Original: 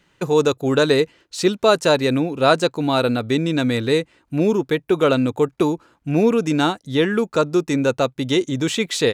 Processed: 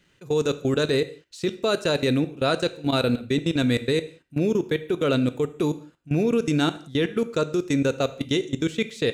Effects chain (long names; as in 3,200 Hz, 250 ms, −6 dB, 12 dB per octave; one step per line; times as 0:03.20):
parametric band 910 Hz −8 dB 1 octave
output level in coarse steps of 21 dB
reverb whose tail is shaped and stops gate 210 ms falling, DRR 11.5 dB